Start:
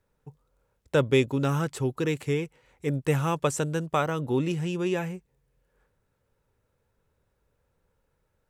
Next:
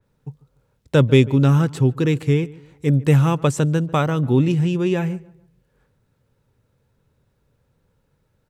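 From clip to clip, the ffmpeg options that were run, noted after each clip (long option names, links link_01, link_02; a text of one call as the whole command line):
ffmpeg -i in.wav -filter_complex "[0:a]equalizer=frequency=125:width_type=o:width=1:gain=9,equalizer=frequency=250:width_type=o:width=1:gain=5,equalizer=frequency=4000:width_type=o:width=1:gain=4,asplit=2[link_01][link_02];[link_02]adelay=145,lowpass=frequency=1900:poles=1,volume=-20.5dB,asplit=2[link_03][link_04];[link_04]adelay=145,lowpass=frequency=1900:poles=1,volume=0.35,asplit=2[link_05][link_06];[link_06]adelay=145,lowpass=frequency=1900:poles=1,volume=0.35[link_07];[link_01][link_03][link_05][link_07]amix=inputs=4:normalize=0,adynamicequalizer=threshold=0.00708:dfrequency=3300:dqfactor=0.7:tfrequency=3300:tqfactor=0.7:attack=5:release=100:ratio=0.375:range=2:mode=cutabove:tftype=highshelf,volume=3.5dB" out.wav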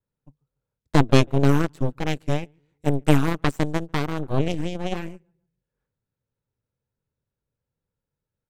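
ffmpeg -i in.wav -af "aeval=exprs='0.891*(cos(1*acos(clip(val(0)/0.891,-1,1)))-cos(1*PI/2))+0.141*(cos(3*acos(clip(val(0)/0.891,-1,1)))-cos(3*PI/2))+0.316*(cos(4*acos(clip(val(0)/0.891,-1,1)))-cos(4*PI/2))+0.0501*(cos(7*acos(clip(val(0)/0.891,-1,1)))-cos(7*PI/2))':channel_layout=same,volume=-2.5dB" out.wav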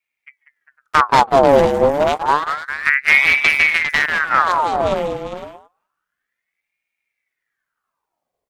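ffmpeg -i in.wav -af "aecho=1:1:192|401|505:0.316|0.316|0.168,aeval=exprs='1*sin(PI/2*1.78*val(0)/1)':channel_layout=same,aeval=exprs='val(0)*sin(2*PI*1400*n/s+1400*0.65/0.29*sin(2*PI*0.29*n/s))':channel_layout=same,volume=-1dB" out.wav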